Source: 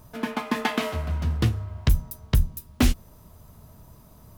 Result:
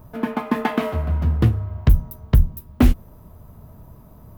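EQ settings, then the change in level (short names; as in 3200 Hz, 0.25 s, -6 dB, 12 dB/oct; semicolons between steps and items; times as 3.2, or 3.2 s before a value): bell 6100 Hz -15 dB 2.7 oct; +6.0 dB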